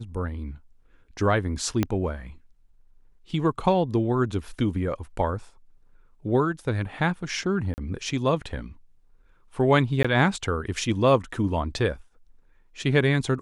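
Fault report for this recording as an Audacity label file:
1.830000	1.830000	pop -10 dBFS
7.740000	7.780000	gap 39 ms
10.030000	10.040000	gap 15 ms

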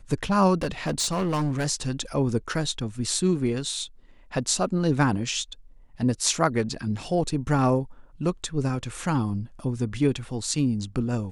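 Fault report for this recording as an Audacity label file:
0.610000	1.660000	clipped -21.5 dBFS

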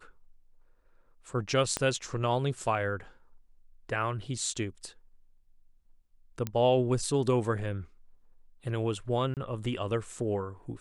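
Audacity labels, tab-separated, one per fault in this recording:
1.770000	1.770000	pop -14 dBFS
6.470000	6.470000	pop -18 dBFS
9.340000	9.370000	gap 28 ms

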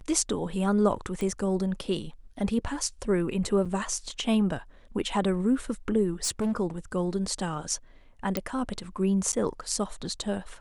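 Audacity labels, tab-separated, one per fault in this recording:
1.210000	1.210000	pop -20 dBFS
3.650000	3.660000	gap 6.1 ms
6.240000	6.520000	clipped -23.5 dBFS
8.370000	8.370000	pop -12 dBFS
9.320000	9.330000	gap 8.7 ms

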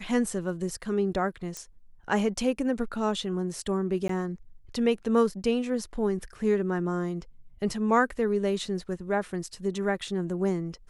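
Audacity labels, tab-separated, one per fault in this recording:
1.570000	1.570000	pop -21 dBFS
4.080000	4.090000	gap 13 ms

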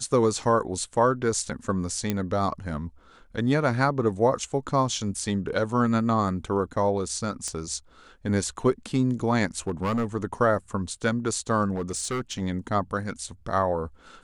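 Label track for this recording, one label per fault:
2.100000	2.100000	pop -11 dBFS
7.480000	7.480000	pop -18 dBFS
9.670000	10.060000	clipped -21.5 dBFS
11.750000	12.410000	clipped -24.5 dBFS

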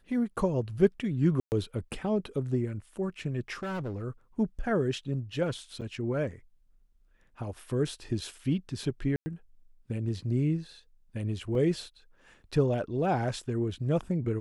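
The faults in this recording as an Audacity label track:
1.400000	1.520000	gap 0.119 s
3.550000	4.040000	clipped -31 dBFS
5.810000	5.820000	gap 6.9 ms
9.160000	9.260000	gap 0.1 s
11.550000	11.550000	gap 2.3 ms

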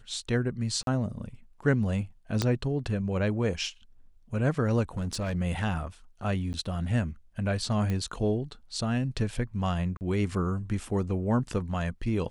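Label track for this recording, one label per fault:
0.830000	0.870000	gap 42 ms
2.420000	2.420000	pop -12 dBFS
4.970000	5.360000	clipped -27 dBFS
6.530000	6.540000	gap 9.5 ms
7.900000	7.900000	pop -19 dBFS
9.970000	10.010000	gap 39 ms

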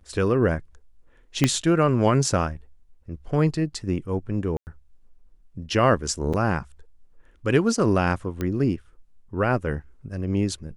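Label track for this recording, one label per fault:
1.440000	1.440000	pop -5 dBFS
4.570000	4.670000	gap 99 ms
6.330000	6.340000	gap 6.1 ms
8.410000	8.410000	pop -15 dBFS

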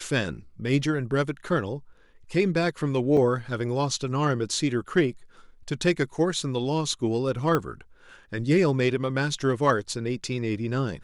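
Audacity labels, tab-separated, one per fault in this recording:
3.170000	3.170000	gap 2.4 ms
7.550000	7.550000	pop -11 dBFS

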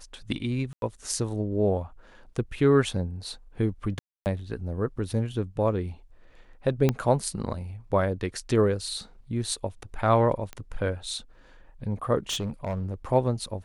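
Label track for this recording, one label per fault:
0.730000	0.820000	gap 92 ms
3.990000	4.260000	gap 0.269 s
6.890000	6.890000	pop -10 dBFS
10.530000	10.530000	pop -22 dBFS
12.290000	12.940000	clipped -25.5 dBFS

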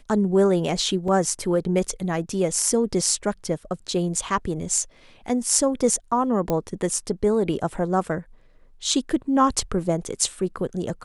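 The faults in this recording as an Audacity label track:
1.080000	1.080000	gap 2.5 ms
6.500000	6.500000	pop -11 dBFS

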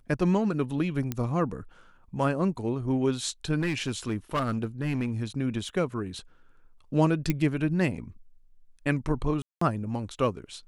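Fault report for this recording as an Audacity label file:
1.120000	1.120000	pop -15 dBFS
3.600000	5.110000	clipped -23 dBFS
5.690000	5.690000	gap 2.3 ms
7.300000	7.300000	pop -12 dBFS
9.420000	9.610000	gap 0.194 s

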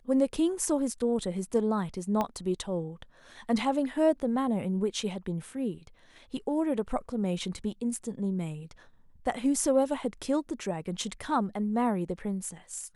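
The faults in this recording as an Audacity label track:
2.210000	2.210000	pop -16 dBFS

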